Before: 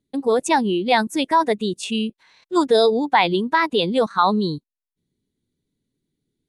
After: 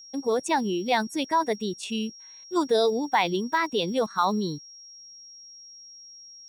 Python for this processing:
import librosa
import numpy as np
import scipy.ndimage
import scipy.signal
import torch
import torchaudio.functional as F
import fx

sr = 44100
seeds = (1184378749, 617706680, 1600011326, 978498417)

y = fx.block_float(x, sr, bits=7)
y = y + 10.0 ** (-38.0 / 20.0) * np.sin(2.0 * np.pi * 5600.0 * np.arange(len(y)) / sr)
y = y * 10.0 ** (-6.5 / 20.0)